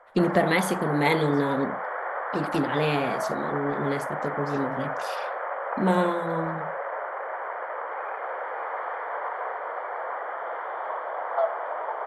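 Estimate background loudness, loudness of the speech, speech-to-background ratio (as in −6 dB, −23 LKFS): −31.5 LKFS, −27.0 LKFS, 4.5 dB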